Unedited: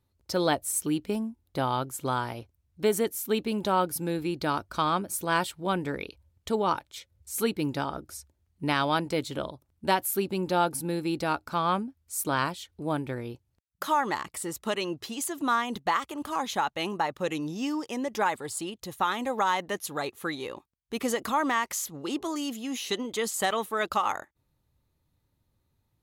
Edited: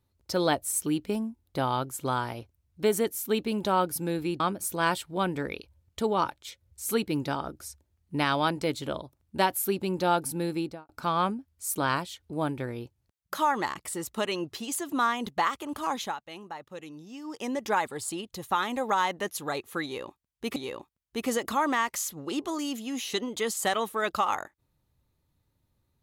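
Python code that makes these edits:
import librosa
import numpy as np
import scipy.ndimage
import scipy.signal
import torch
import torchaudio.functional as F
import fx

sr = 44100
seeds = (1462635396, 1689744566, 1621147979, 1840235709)

y = fx.studio_fade_out(x, sr, start_s=11.01, length_s=0.37)
y = fx.edit(y, sr, fx.cut(start_s=4.4, length_s=0.49),
    fx.fade_down_up(start_s=16.47, length_s=1.45, db=-12.0, fade_s=0.2),
    fx.repeat(start_s=20.33, length_s=0.72, count=2), tone=tone)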